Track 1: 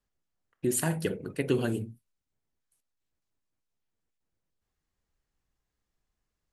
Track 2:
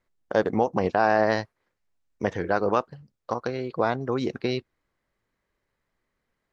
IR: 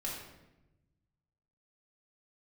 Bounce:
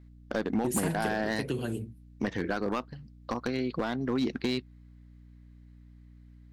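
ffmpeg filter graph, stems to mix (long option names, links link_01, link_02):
-filter_complex "[0:a]acrossover=split=200|3000[link_01][link_02][link_03];[link_02]acompressor=threshold=-28dB:ratio=6[link_04];[link_01][link_04][link_03]amix=inputs=3:normalize=0,volume=-2.5dB[link_05];[1:a]equalizer=frequency=250:width_type=o:width=1:gain=10,equalizer=frequency=500:width_type=o:width=1:gain=-3,equalizer=frequency=2000:width_type=o:width=1:gain=5,equalizer=frequency=4000:width_type=o:width=1:gain=8,acompressor=threshold=-24dB:ratio=3,aeval=exprs='val(0)+0.00355*(sin(2*PI*60*n/s)+sin(2*PI*2*60*n/s)/2+sin(2*PI*3*60*n/s)/3+sin(2*PI*4*60*n/s)/4+sin(2*PI*5*60*n/s)/5)':channel_layout=same,volume=-2dB[link_06];[link_05][link_06]amix=inputs=2:normalize=0,volume=21.5dB,asoftclip=hard,volume=-21.5dB"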